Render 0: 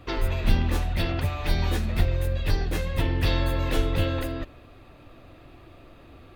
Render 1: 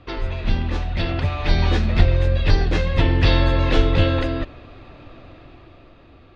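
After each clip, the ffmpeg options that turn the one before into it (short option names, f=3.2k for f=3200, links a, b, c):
-af "lowpass=f=5.4k:w=0.5412,lowpass=f=5.4k:w=1.3066,dynaudnorm=f=220:g=11:m=11.5dB"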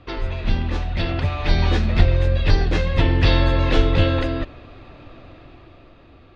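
-af anull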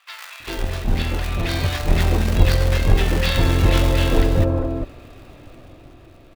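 -filter_complex "[0:a]acrossover=split=580[a][b];[a]acrusher=bits=2:mode=log:mix=0:aa=0.000001[c];[c][b]amix=inputs=2:normalize=0,acrossover=split=1100[d][e];[d]adelay=400[f];[f][e]amix=inputs=2:normalize=0"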